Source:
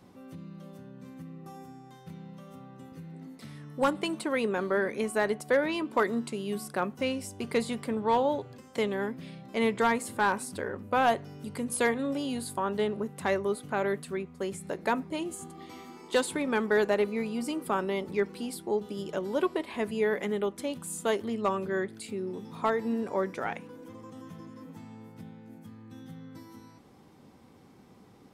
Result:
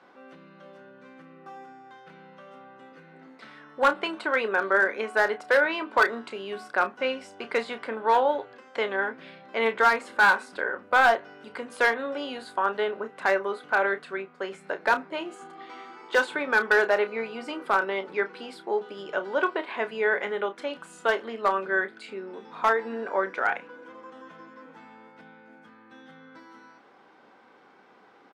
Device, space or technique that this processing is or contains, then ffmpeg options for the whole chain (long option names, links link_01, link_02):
megaphone: -filter_complex "[0:a]highpass=540,lowpass=3000,equalizer=frequency=1500:width_type=o:width=0.25:gain=9,asoftclip=type=hard:threshold=-19.5dB,asplit=2[link_01][link_02];[link_02]adelay=31,volume=-10.5dB[link_03];[link_01][link_03]amix=inputs=2:normalize=0,volume=6dB"